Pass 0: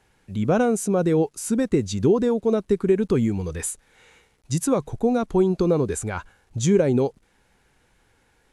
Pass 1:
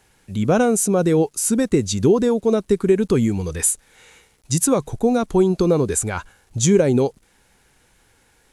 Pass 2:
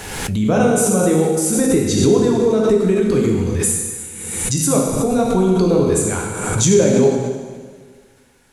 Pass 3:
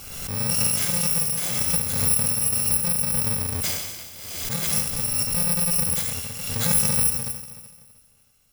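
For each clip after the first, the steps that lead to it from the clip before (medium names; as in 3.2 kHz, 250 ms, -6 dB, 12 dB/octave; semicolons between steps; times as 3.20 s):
treble shelf 4.7 kHz +9 dB; trim +3 dB
plate-style reverb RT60 1.7 s, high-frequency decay 0.95×, DRR -2 dB; swell ahead of each attack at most 41 dB/s; trim -2 dB
bit-reversed sample order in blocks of 128 samples; trim -8 dB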